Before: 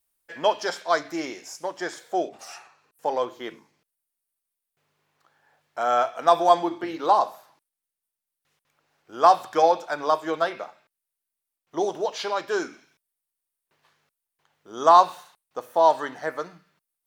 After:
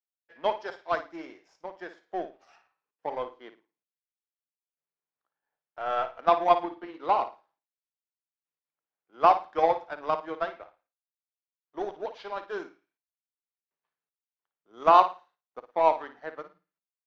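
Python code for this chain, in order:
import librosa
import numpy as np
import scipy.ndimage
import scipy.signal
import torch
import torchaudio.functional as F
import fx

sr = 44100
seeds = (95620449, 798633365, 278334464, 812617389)

y = scipy.signal.sosfilt(scipy.signal.bessel(8, 200.0, 'highpass', norm='mag', fs=sr, output='sos'), x)
y = fx.power_curve(y, sr, exponent=1.4)
y = fx.air_absorb(y, sr, metres=250.0)
y = fx.room_flutter(y, sr, wall_m=9.5, rt60_s=0.29)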